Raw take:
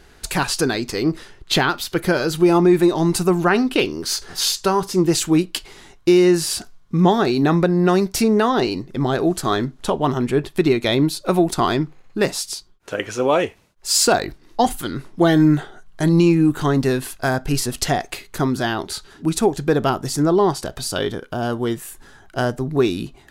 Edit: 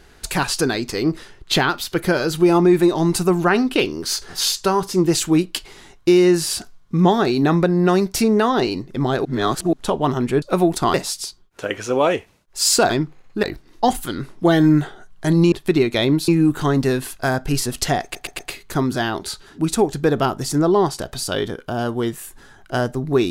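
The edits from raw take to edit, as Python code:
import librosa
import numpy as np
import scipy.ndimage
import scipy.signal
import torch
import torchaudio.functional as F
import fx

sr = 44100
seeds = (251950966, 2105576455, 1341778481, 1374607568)

y = fx.edit(x, sr, fx.reverse_span(start_s=9.25, length_s=0.48),
    fx.move(start_s=10.42, length_s=0.76, to_s=16.28),
    fx.move(start_s=11.7, length_s=0.53, to_s=14.19),
    fx.stutter(start_s=18.03, slice_s=0.12, count=4), tone=tone)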